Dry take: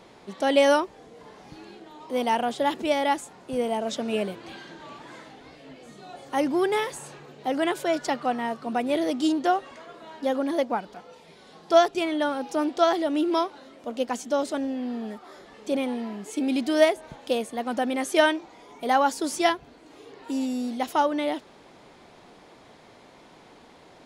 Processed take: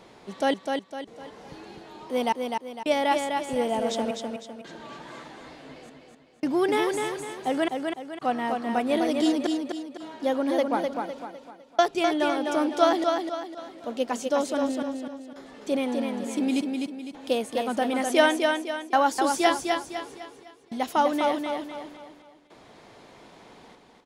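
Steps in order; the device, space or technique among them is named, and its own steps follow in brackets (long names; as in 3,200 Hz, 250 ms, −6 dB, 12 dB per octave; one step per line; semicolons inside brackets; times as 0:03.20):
trance gate with a delay (gate pattern "xxx...xxxx" 84 BPM −60 dB; repeating echo 253 ms, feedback 41%, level −4.5 dB)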